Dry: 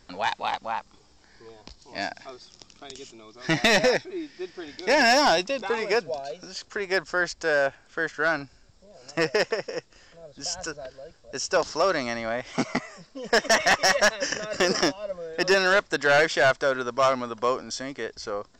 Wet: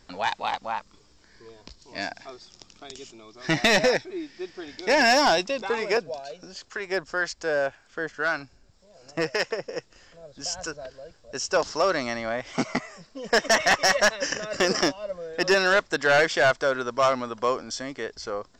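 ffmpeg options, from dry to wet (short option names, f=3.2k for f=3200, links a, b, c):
-filter_complex "[0:a]asettb=1/sr,asplit=3[a][b][c];[a]atrim=end=0.784[d];[b]atrim=start=0.78:end=2.07,asetpts=PTS-STARTPTS,afade=t=in:d=0.004:c=qsin,afade=t=out:st=1.286:d=0.004:c=qsin,equalizer=f=790:w=7.2:g=-12[e];[c]atrim=start=2.066[f];[d][e]acrossfade=d=0.004:c1=hsin:c2=qsin[g];[g][f]acrossfade=d=0.004:c1=qsin:c2=hsin,asettb=1/sr,asplit=3[h][i][j];[h]atrim=end=5.974[k];[i]atrim=start=5.97:end=9.76,asetpts=PTS-STARTPTS,afade=t=in:d=0.004:c=qsin,afade=t=out:st=3.786:d=0.004:c=qsin,acrossover=split=800[l][m];[l]aeval=exprs='val(0)*(1-0.5/2+0.5/2*cos(2*PI*1.9*n/s))':c=same[n];[m]aeval=exprs='val(0)*(1-0.5/2-0.5/2*cos(2*PI*1.9*n/s))':c=same[o];[n][o]amix=inputs=2:normalize=0[p];[j]atrim=start=9.756[q];[k][p]acrossfade=d=0.004:c1=hsin:c2=qsin[r];[r][q]acrossfade=d=0.004:c1=qsin:c2=hsin"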